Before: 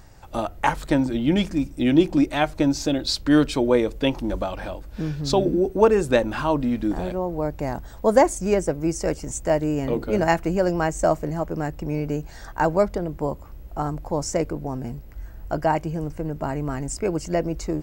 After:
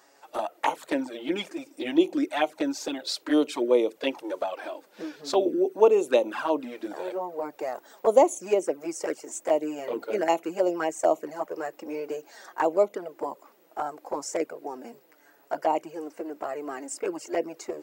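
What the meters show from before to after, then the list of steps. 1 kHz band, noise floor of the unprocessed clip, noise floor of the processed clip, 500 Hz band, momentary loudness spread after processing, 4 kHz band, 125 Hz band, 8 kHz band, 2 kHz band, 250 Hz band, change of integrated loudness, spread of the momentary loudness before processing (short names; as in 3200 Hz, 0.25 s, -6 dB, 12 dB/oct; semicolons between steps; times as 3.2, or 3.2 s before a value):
-3.5 dB, -41 dBFS, -60 dBFS, -2.5 dB, 14 LU, -5.0 dB, under -25 dB, -4.5 dB, -6.0 dB, -7.5 dB, -4.5 dB, 11 LU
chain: HPF 330 Hz 24 dB/oct; dynamic EQ 4800 Hz, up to -4 dB, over -46 dBFS, Q 1.3; envelope flanger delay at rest 7.6 ms, full sweep at -18 dBFS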